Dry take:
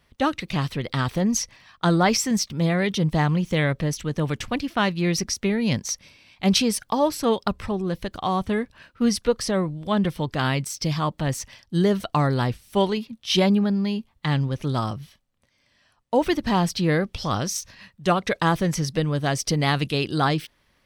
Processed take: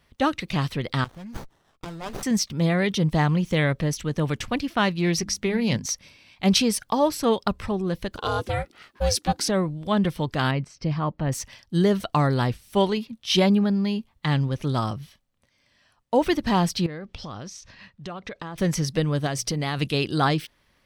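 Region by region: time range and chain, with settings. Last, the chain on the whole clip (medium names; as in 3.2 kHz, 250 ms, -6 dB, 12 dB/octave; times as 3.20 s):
1.04–2.23 s: amplifier tone stack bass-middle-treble 5-5-5 + sliding maximum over 17 samples
4.96–5.86 s: hum notches 50/100/150/200/250/300 Hz + loudspeaker Doppler distortion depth 0.12 ms
8.17–9.49 s: treble shelf 2.6 kHz +7.5 dB + ring modulator 300 Hz + hard clipper -10.5 dBFS
10.51–11.32 s: tape spacing loss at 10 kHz 27 dB + band-stop 3.5 kHz, Q 9.9
16.86–18.58 s: compression, threshold -32 dBFS + distance through air 84 m
19.26–19.79 s: hum notches 60/120/180 Hz + compression, threshold -22 dBFS
whole clip: none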